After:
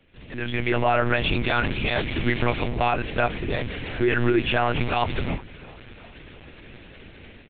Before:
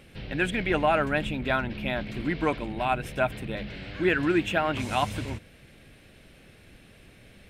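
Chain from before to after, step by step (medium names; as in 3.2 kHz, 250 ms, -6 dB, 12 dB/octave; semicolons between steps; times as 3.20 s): 1.10–2.68 s: treble shelf 2.4 kHz +9.5 dB; peak limiter -19 dBFS, peak gain reduction 9 dB; level rider gain up to 16.5 dB; frequency-shifting echo 357 ms, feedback 62%, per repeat -42 Hz, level -22 dB; monotone LPC vocoder at 8 kHz 120 Hz; trim -8.5 dB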